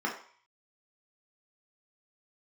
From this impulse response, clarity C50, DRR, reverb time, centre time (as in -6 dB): 7.5 dB, -2.5 dB, 0.50 s, 24 ms